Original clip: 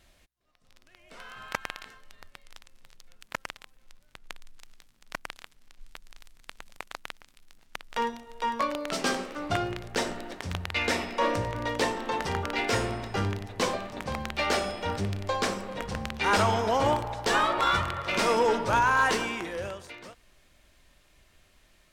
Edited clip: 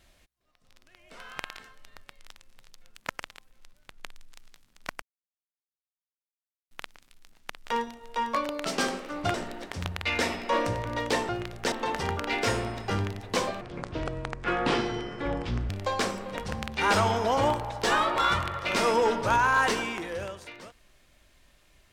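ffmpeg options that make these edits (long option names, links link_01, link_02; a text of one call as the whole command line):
ffmpeg -i in.wav -filter_complex "[0:a]asplit=9[link_01][link_02][link_03][link_04][link_05][link_06][link_07][link_08][link_09];[link_01]atrim=end=1.392[link_10];[link_02]atrim=start=1.648:end=5.28,asetpts=PTS-STARTPTS,afade=type=out:start_time=3.628:duration=0.004:curve=hsin[link_11];[link_03]atrim=start=5.28:end=6.97,asetpts=PTS-STARTPTS,volume=0[link_12];[link_04]atrim=start=6.97:end=9.602,asetpts=PTS-STARTPTS,afade=type=in:duration=0.004:curve=hsin[link_13];[link_05]atrim=start=10.028:end=11.982[link_14];[link_06]atrim=start=9.598:end=10.032[link_15];[link_07]atrim=start=11.978:end=13.874[link_16];[link_08]atrim=start=13.87:end=15.12,asetpts=PTS-STARTPTS,asetrate=26460,aresample=44100[link_17];[link_09]atrim=start=15.116[link_18];[link_11][link_12][link_13]concat=n=3:v=0:a=1[link_19];[link_10][link_19]acrossfade=duration=0.004:curve1=hsin:curve2=hsin[link_20];[link_20][link_14]acrossfade=duration=0.004:curve1=hsin:curve2=hsin[link_21];[link_21][link_15]acrossfade=duration=0.004:curve1=hsin:curve2=hsin[link_22];[link_22][link_16]acrossfade=duration=0.004:curve1=hsin:curve2=hsin[link_23];[link_23][link_17]acrossfade=duration=0.004:curve1=hsin:curve2=hsin[link_24];[link_24][link_18]acrossfade=duration=0.004:curve1=hsin:curve2=hsin" out.wav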